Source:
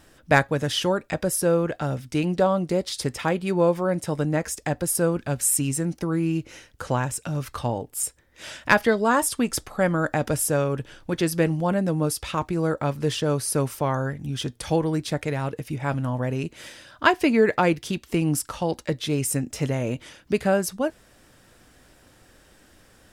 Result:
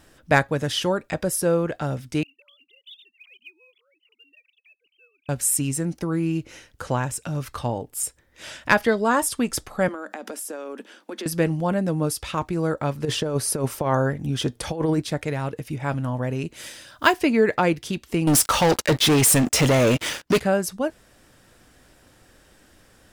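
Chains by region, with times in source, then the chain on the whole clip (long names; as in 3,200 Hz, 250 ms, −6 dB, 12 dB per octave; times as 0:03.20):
0:02.23–0:05.29: three sine waves on the formant tracks + elliptic high-pass filter 2,700 Hz + floating-point word with a short mantissa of 4 bits
0:09.88–0:11.26: Chebyshev high-pass filter 200 Hz, order 8 + downward compressor 12 to 1, threshold −29 dBFS
0:13.05–0:15.02: parametric band 520 Hz +5 dB 2.4 octaves + compressor whose output falls as the input rises −21 dBFS, ratio −0.5
0:16.53–0:17.19: one scale factor per block 7 bits + high-shelf EQ 4,900 Hz +9 dB
0:18.27–0:20.40: low-shelf EQ 310 Hz −8.5 dB + leveller curve on the samples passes 5
whole clip: no processing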